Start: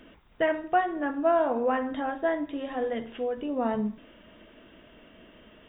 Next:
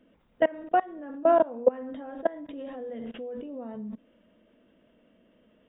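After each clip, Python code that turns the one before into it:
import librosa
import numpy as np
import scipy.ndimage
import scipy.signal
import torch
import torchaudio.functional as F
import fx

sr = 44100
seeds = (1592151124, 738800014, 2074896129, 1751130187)

y = fx.level_steps(x, sr, step_db=23)
y = fx.small_body(y, sr, hz=(220.0, 500.0), ring_ms=20, db=10)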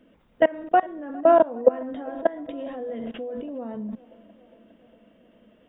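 y = fx.echo_filtered(x, sr, ms=408, feedback_pct=70, hz=2200.0, wet_db=-22.5)
y = y * librosa.db_to_amplitude(4.5)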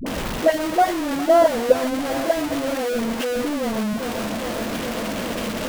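y = x + 0.5 * 10.0 ** (-20.5 / 20.0) * np.sign(x)
y = fx.dispersion(y, sr, late='highs', ms=64.0, hz=440.0)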